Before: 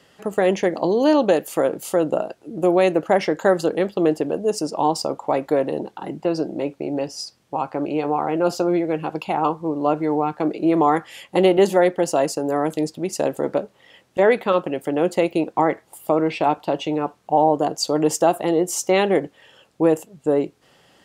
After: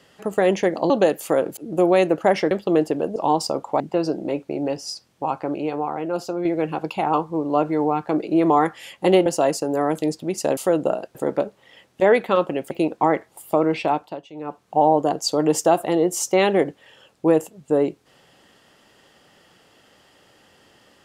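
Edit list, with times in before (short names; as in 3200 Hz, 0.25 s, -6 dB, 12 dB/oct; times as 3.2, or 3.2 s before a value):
0.9–1.17 cut
1.84–2.42 move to 13.32
3.36–3.81 cut
4.46–4.71 cut
5.35–6.11 cut
7.65–8.76 fade out quadratic, to -6.5 dB
11.57–12.01 cut
14.88–15.27 cut
16.37–17.3 dip -17.5 dB, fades 0.42 s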